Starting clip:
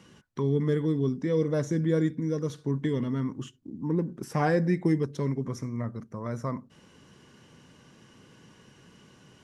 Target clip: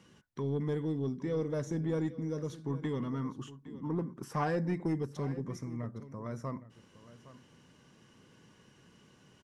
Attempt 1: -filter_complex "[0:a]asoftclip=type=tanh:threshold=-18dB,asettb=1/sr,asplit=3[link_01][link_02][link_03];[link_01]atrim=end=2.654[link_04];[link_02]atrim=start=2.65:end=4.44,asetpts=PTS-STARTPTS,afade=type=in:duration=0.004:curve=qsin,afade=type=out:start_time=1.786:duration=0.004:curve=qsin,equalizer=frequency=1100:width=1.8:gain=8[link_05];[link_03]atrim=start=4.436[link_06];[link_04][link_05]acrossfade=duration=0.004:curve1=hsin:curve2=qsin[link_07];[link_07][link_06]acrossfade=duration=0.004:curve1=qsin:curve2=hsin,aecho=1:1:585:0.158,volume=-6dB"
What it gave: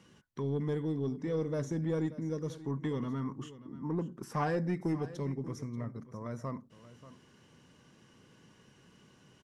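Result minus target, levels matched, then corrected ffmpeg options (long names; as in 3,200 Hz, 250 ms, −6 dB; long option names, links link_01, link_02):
echo 228 ms early
-filter_complex "[0:a]asoftclip=type=tanh:threshold=-18dB,asettb=1/sr,asplit=3[link_01][link_02][link_03];[link_01]atrim=end=2.654[link_04];[link_02]atrim=start=2.65:end=4.44,asetpts=PTS-STARTPTS,afade=type=in:duration=0.004:curve=qsin,afade=type=out:start_time=1.786:duration=0.004:curve=qsin,equalizer=frequency=1100:width=1.8:gain=8[link_05];[link_03]atrim=start=4.436[link_06];[link_04][link_05]acrossfade=duration=0.004:curve1=hsin:curve2=qsin[link_07];[link_07][link_06]acrossfade=duration=0.004:curve1=qsin:curve2=hsin,aecho=1:1:813:0.158,volume=-6dB"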